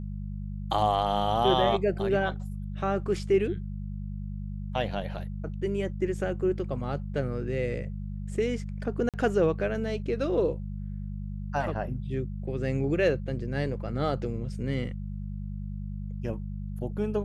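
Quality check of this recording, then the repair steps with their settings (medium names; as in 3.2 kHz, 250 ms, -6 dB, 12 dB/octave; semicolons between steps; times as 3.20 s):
hum 50 Hz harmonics 4 -35 dBFS
9.09–9.14 s: dropout 47 ms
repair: de-hum 50 Hz, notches 4; interpolate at 9.09 s, 47 ms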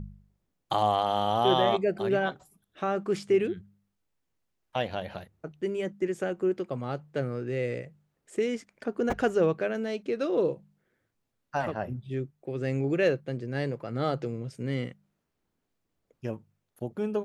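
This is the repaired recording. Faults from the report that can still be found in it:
nothing left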